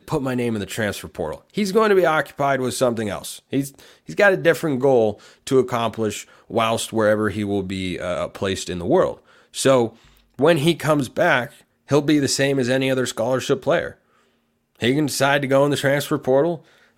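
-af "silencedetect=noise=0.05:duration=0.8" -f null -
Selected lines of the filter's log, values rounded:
silence_start: 13.89
silence_end: 14.82 | silence_duration: 0.93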